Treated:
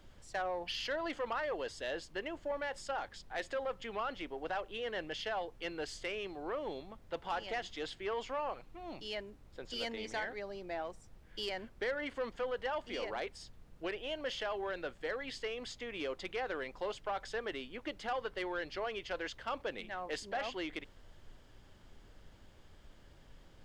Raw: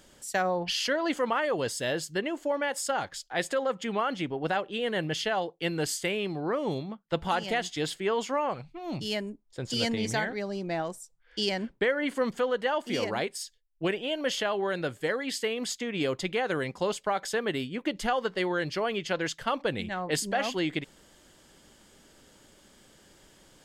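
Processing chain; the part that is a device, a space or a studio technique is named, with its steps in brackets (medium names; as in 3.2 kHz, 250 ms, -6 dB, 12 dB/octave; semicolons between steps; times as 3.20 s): aircraft cabin announcement (band-pass 380–4100 Hz; saturation -22 dBFS, distortion -17 dB; brown noise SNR 15 dB); trim -6.5 dB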